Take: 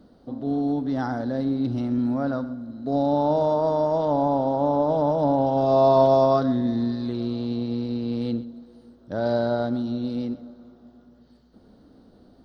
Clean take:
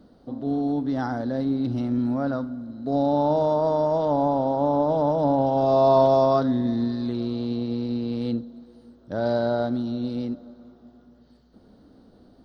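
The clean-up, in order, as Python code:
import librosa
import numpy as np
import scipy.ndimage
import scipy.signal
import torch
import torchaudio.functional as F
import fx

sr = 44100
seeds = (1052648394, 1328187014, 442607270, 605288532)

y = fx.fix_echo_inverse(x, sr, delay_ms=127, level_db=-17.5)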